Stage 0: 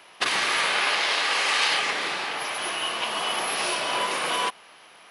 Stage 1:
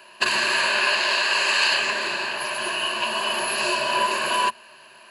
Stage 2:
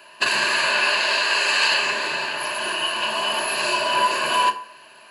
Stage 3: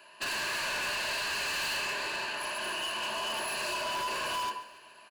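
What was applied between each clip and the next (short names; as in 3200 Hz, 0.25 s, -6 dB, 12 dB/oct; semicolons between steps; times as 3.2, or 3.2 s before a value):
ripple EQ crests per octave 1.4, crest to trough 14 dB
FDN reverb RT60 0.52 s, low-frequency decay 0.75×, high-frequency decay 0.6×, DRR 4 dB
overloaded stage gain 23 dB; feedback echo 0.141 s, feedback 55%, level -17 dB; gain -8 dB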